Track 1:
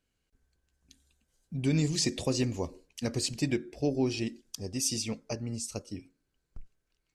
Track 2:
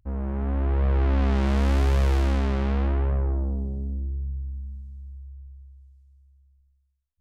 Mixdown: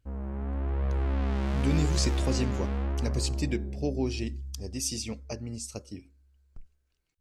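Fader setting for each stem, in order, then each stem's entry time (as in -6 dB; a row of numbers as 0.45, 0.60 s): -1.5, -6.5 dB; 0.00, 0.00 s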